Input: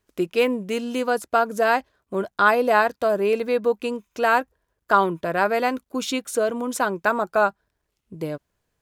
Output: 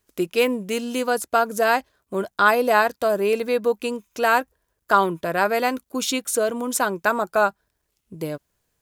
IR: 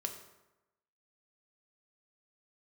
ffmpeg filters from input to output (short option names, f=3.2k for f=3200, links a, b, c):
-af "highshelf=f=5.2k:g=9.5"